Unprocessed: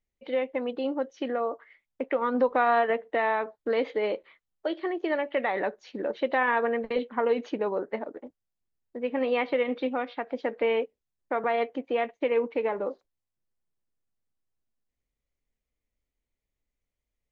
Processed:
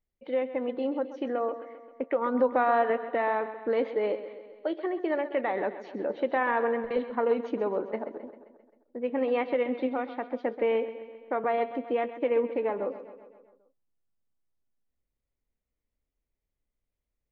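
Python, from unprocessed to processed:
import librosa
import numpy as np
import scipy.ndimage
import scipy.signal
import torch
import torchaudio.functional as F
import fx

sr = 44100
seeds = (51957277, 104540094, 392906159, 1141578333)

y = fx.high_shelf(x, sr, hz=2200.0, db=-10.5)
y = fx.echo_feedback(y, sr, ms=132, feedback_pct=59, wet_db=-13)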